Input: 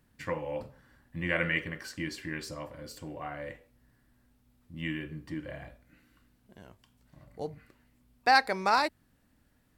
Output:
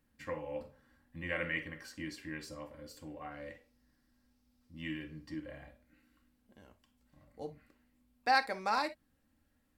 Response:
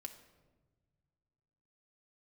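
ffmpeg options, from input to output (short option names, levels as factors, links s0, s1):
-filter_complex "[0:a]asettb=1/sr,asplit=3[s0][s1][s2];[s0]atrim=end=3.314[s3];[s1]atrim=start=3.31:end=5.4,asetpts=PTS-STARTPTS,afade=t=in:d=0.004:c=qsin,afade=t=out:st=2.086:d=0.004:c=qsin,equalizer=f=5100:w=1.8:g=9.5[s4];[s2]atrim=start=5.396[s5];[s3][s4]acrossfade=d=0.004:c1=hsin:c2=qsin[s6];[s6][s5]acrossfade=d=0.004:c1=qsin:c2=hsin[s7];[1:a]atrim=start_sample=2205,atrim=end_sample=3087[s8];[s7][s8]afir=irnorm=-1:irlink=0,volume=0.794"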